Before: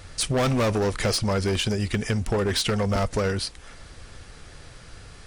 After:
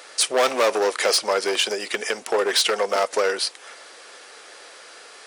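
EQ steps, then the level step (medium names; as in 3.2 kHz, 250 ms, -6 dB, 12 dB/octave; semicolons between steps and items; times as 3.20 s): high-pass 410 Hz 24 dB/octave; +6.0 dB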